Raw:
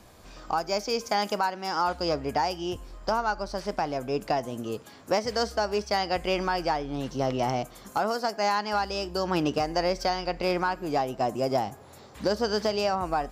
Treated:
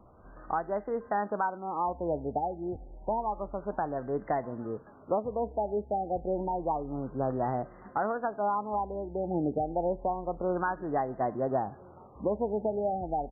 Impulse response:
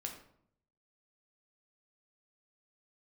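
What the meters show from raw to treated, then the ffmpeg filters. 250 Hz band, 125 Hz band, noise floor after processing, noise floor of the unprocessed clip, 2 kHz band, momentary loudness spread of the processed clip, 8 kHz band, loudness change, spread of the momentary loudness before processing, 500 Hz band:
-3.0 dB, -3.0 dB, -52 dBFS, -50 dBFS, -9.5 dB, 6 LU, under -40 dB, -4.0 dB, 6 LU, -3.0 dB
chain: -filter_complex "[0:a]asplit=2[a][b];[b]adelay=1341,volume=-25dB,highshelf=f=4k:g=-30.2[c];[a][c]amix=inputs=2:normalize=0,afftfilt=real='re*lt(b*sr/1024,860*pow(2100/860,0.5+0.5*sin(2*PI*0.29*pts/sr)))':imag='im*lt(b*sr/1024,860*pow(2100/860,0.5+0.5*sin(2*PI*0.29*pts/sr)))':win_size=1024:overlap=0.75,volume=-3dB"

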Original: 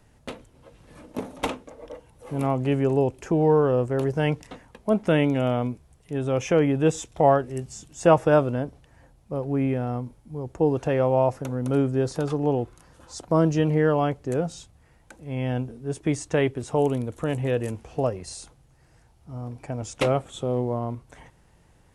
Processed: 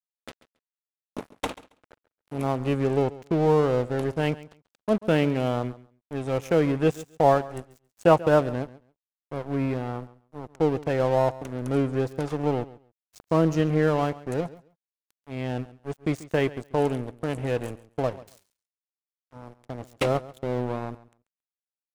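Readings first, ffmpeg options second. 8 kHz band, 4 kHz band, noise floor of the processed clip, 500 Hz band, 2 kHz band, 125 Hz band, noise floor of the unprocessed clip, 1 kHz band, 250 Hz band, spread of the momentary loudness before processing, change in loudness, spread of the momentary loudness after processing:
n/a, -1.0 dB, under -85 dBFS, -1.5 dB, -0.5 dB, -2.5 dB, -58 dBFS, -1.0 dB, -2.0 dB, 17 LU, -1.5 dB, 16 LU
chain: -af "aeval=exprs='sgn(val(0))*max(abs(val(0))-0.0224,0)':c=same,aecho=1:1:137|274:0.119|0.0202"

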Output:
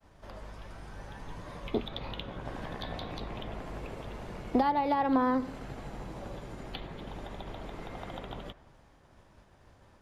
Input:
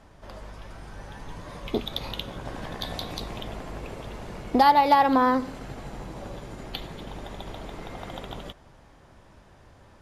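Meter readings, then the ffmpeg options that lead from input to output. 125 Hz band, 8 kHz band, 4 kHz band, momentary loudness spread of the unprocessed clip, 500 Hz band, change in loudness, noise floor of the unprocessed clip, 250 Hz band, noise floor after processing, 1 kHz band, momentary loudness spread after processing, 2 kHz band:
-3.5 dB, n/a, -9.5 dB, 24 LU, -5.5 dB, -9.5 dB, -54 dBFS, -3.5 dB, -60 dBFS, -10.0 dB, 19 LU, -8.5 dB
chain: -filter_complex "[0:a]agate=range=-33dB:threshold=-49dB:ratio=3:detection=peak,acrossover=split=330|410|3500[a][b][c][d];[c]alimiter=limit=-18.5dB:level=0:latency=1:release=295[e];[d]acompressor=threshold=-59dB:ratio=4[f];[a][b][e][f]amix=inputs=4:normalize=0,volume=-3.5dB"

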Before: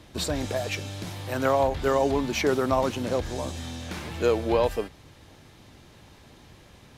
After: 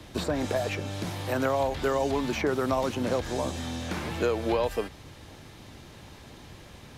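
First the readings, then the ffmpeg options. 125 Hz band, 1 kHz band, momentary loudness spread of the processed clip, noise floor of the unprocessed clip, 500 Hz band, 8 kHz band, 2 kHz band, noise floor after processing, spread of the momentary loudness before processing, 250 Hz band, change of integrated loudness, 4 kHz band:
-1.0 dB, -2.5 dB, 21 LU, -53 dBFS, -2.5 dB, -3.5 dB, -1.0 dB, -49 dBFS, 12 LU, -1.0 dB, -2.5 dB, -2.5 dB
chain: -filter_complex "[0:a]acrossover=split=140|890|1900[a][b][c][d];[a]acompressor=threshold=-43dB:ratio=4[e];[b]acompressor=threshold=-30dB:ratio=4[f];[c]acompressor=threshold=-39dB:ratio=4[g];[d]acompressor=threshold=-45dB:ratio=4[h];[e][f][g][h]amix=inputs=4:normalize=0,volume=4dB"

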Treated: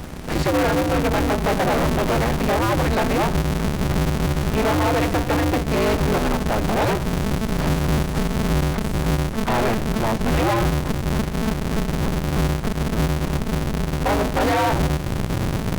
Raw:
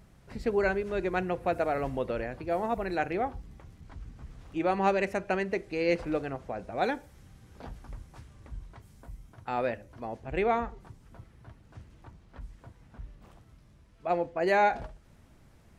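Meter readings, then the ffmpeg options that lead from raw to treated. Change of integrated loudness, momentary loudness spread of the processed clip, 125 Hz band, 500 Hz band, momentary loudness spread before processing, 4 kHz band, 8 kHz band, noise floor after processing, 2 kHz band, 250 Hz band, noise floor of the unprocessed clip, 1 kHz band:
+9.0 dB, 5 LU, +21.5 dB, +8.0 dB, 22 LU, +19.0 dB, n/a, -26 dBFS, +9.5 dB, +15.0 dB, -58 dBFS, +8.5 dB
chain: -filter_complex "[0:a]asubboost=boost=7.5:cutoff=150,apsyclip=23dB,acrossover=split=470|1100[a][b][c];[a]acompressor=threshold=-16dB:ratio=4[d];[b]acompressor=threshold=-16dB:ratio=4[e];[c]acompressor=threshold=-28dB:ratio=4[f];[d][e][f]amix=inputs=3:normalize=0,aeval=exprs='(tanh(6.31*val(0)+0.05)-tanh(0.05))/6.31':c=same,aeval=exprs='val(0)*sgn(sin(2*PI*110*n/s))':c=same"

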